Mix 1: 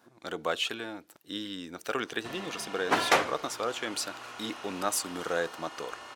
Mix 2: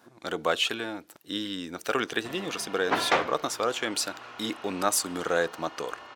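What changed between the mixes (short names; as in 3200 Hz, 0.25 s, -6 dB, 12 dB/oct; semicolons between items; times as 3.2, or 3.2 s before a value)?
speech +4.5 dB; background: add Gaussian blur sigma 1.6 samples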